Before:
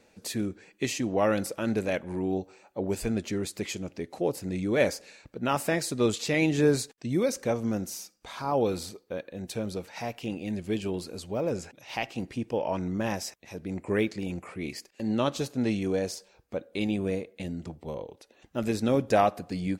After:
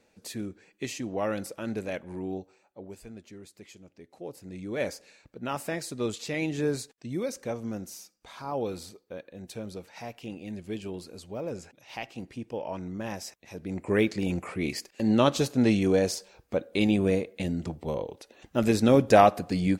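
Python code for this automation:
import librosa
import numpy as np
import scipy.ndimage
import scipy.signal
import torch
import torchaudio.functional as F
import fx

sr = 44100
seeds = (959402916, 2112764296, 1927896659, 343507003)

y = fx.gain(x, sr, db=fx.line((2.31, -5.0), (3.03, -16.0), (3.89, -16.0), (4.91, -5.5), (13.06, -5.5), (14.29, 5.0)))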